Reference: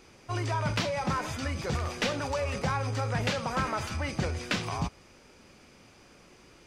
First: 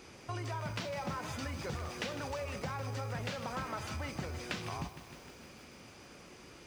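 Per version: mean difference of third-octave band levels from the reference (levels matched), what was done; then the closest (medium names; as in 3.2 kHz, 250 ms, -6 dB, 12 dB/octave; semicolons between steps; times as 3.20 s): 5.5 dB: compression 3:1, threshold -42 dBFS, peak gain reduction 13 dB; high-pass 48 Hz; bit-crushed delay 154 ms, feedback 80%, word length 9-bit, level -12 dB; trim +2 dB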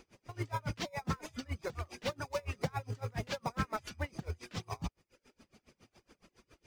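8.0 dB: reverb removal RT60 0.79 s; in parallel at -9.5 dB: sample-and-hold 29×; on the sum: logarithmic tremolo 7.2 Hz, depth 29 dB; trim -2 dB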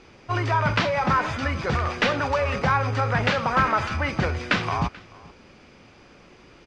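4.0 dB: low-pass 4.2 kHz 12 dB/octave; dynamic bell 1.4 kHz, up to +6 dB, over -44 dBFS, Q 0.93; on a send: delay 435 ms -23 dB; on the sum: trim +5.5 dB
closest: third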